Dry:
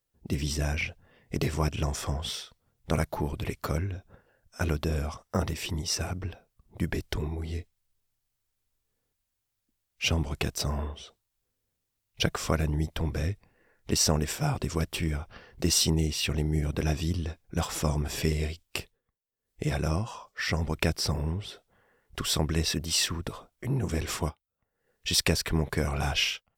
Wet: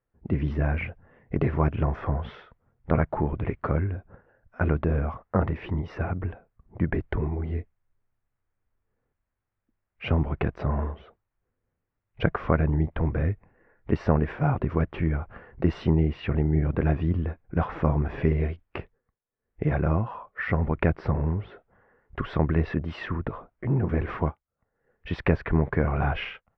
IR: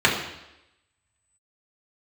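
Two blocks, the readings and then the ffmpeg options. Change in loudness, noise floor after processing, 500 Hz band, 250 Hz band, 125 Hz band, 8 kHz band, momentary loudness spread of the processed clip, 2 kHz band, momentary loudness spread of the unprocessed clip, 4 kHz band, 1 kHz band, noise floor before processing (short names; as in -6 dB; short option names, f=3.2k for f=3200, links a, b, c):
+2.5 dB, -83 dBFS, +4.5 dB, +4.5 dB, +4.5 dB, under -35 dB, 10 LU, 0.0 dB, 12 LU, -16.5 dB, +4.5 dB, -82 dBFS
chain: -af "lowpass=f=1.9k:w=0.5412,lowpass=f=1.9k:w=1.3066,volume=4.5dB"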